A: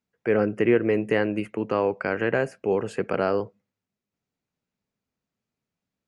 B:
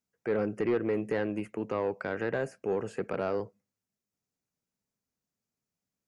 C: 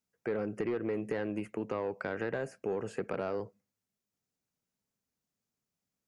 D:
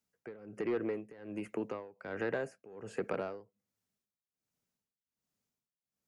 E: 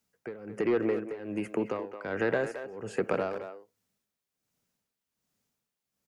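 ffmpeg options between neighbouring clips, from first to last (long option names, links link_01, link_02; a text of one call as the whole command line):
ffmpeg -i in.wav -filter_complex "[0:a]acrossover=split=3200[link_01][link_02];[link_02]acompressor=threshold=-53dB:ratio=4:attack=1:release=60[link_03];[link_01][link_03]amix=inputs=2:normalize=0,highshelf=frequency=4600:width_type=q:width=1.5:gain=6,asoftclip=type=tanh:threshold=-15dB,volume=-5.5dB" out.wav
ffmpeg -i in.wav -af "acompressor=threshold=-30dB:ratio=6" out.wav
ffmpeg -i in.wav -filter_complex "[0:a]tremolo=f=1.3:d=0.91,acrossover=split=200[link_01][link_02];[link_01]alimiter=level_in=22dB:limit=-24dB:level=0:latency=1:release=401,volume=-22dB[link_03];[link_03][link_02]amix=inputs=2:normalize=0,volume=1dB" out.wav
ffmpeg -i in.wav -filter_complex "[0:a]asplit=2[link_01][link_02];[link_02]adelay=220,highpass=300,lowpass=3400,asoftclip=type=hard:threshold=-30.5dB,volume=-9dB[link_03];[link_01][link_03]amix=inputs=2:normalize=0,volume=7dB" out.wav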